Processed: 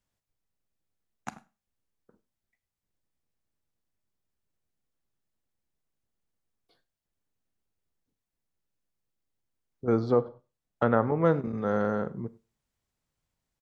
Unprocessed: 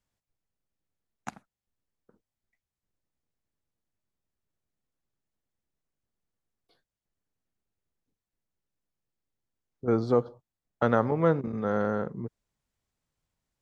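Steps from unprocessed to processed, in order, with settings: 9.98–11.25 s: low-pass that closes with the level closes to 2.2 kHz, closed at -23 dBFS; echo from a far wall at 17 m, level -24 dB; Schroeder reverb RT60 0.32 s, combs from 27 ms, DRR 17 dB

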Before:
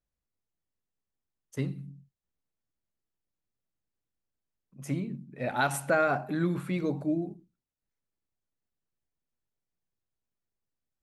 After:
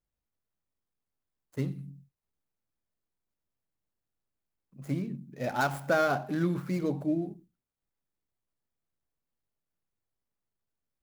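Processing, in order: median filter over 15 samples; treble shelf 9.6 kHz +11 dB

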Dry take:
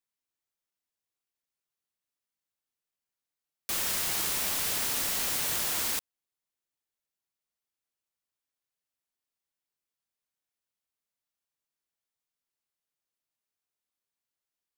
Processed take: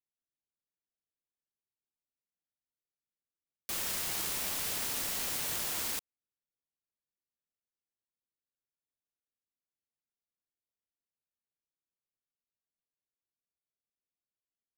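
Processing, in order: local Wiener filter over 41 samples; trim -3.5 dB

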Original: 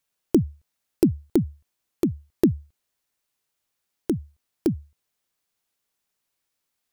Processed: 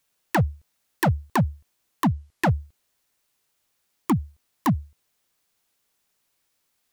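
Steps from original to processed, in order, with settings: 2.07–2.49 s: low-pass that closes with the level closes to 2.2 kHz, closed at -18.5 dBFS; wavefolder -20 dBFS; trim +6.5 dB

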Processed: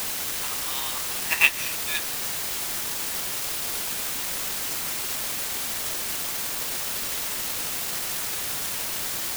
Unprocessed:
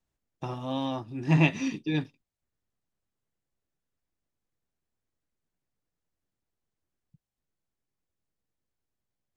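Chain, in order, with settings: high-pass 1.2 kHz 24 dB/octave; word length cut 6-bit, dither triangular; transient shaper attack +7 dB, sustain -4 dB; trim +6.5 dB

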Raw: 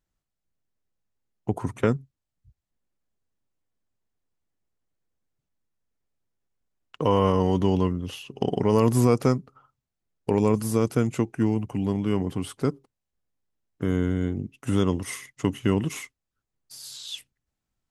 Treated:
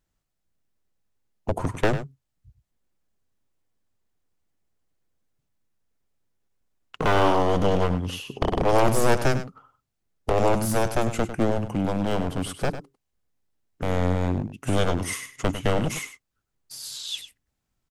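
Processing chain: one-sided wavefolder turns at -24 dBFS; delay 100 ms -11.5 dB; trim +4 dB

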